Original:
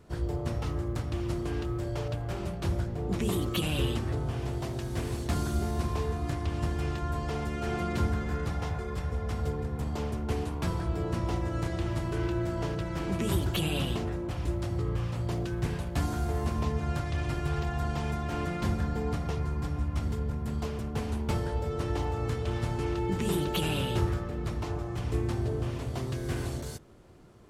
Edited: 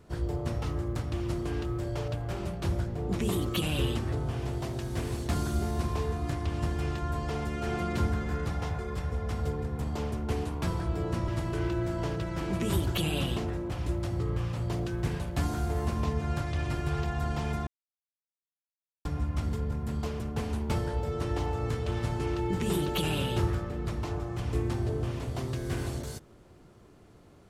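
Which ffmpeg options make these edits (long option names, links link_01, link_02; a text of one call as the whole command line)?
ffmpeg -i in.wav -filter_complex "[0:a]asplit=4[link_01][link_02][link_03][link_04];[link_01]atrim=end=11.282[link_05];[link_02]atrim=start=11.868:end=18.26,asetpts=PTS-STARTPTS,afade=type=out:start_time=6.388:duration=0.004:curve=hsin[link_06];[link_03]atrim=start=18.26:end=19.64,asetpts=PTS-STARTPTS,volume=0[link_07];[link_04]atrim=start=19.64,asetpts=PTS-STARTPTS,afade=type=in:duration=0.004:curve=hsin[link_08];[link_06][link_07][link_08]concat=n=3:v=0:a=1[link_09];[link_05][link_09]acrossfade=duration=0.004:curve1=hsin:curve2=hsin" out.wav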